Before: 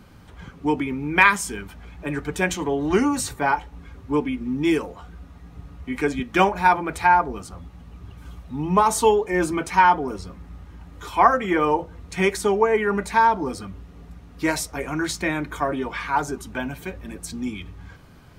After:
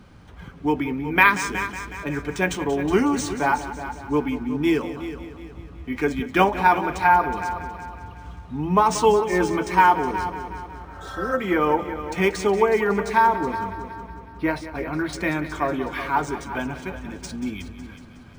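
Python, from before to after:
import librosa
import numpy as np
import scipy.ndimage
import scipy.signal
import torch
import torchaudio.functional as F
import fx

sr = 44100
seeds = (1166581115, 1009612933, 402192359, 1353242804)

p1 = fx.spec_repair(x, sr, seeds[0], start_s=10.61, length_s=0.7, low_hz=540.0, high_hz=3200.0, source='both')
p2 = fx.air_absorb(p1, sr, metres=230.0, at=(13.26, 15.13))
p3 = p2 + fx.echo_heads(p2, sr, ms=184, heads='first and second', feedback_pct=47, wet_db=-14.0, dry=0)
y = np.interp(np.arange(len(p3)), np.arange(len(p3))[::3], p3[::3])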